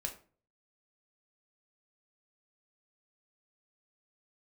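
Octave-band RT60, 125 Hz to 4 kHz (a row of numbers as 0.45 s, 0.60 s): 0.60 s, 0.50 s, 0.45 s, 0.35 s, 0.30 s, 0.25 s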